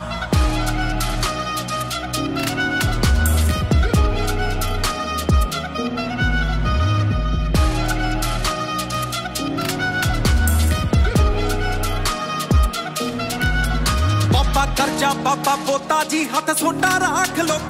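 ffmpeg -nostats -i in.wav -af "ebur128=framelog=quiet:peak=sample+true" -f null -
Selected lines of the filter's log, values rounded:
Integrated loudness:
  I:         -19.7 LUFS
  Threshold: -29.7 LUFS
Loudness range:
  LRA:         2.2 LU
  Threshold: -39.8 LUFS
  LRA low:   -20.7 LUFS
  LRA high:  -18.5 LUFS
Sample peak:
  Peak:       -8.2 dBFS
True peak:
  Peak:       -6.0 dBFS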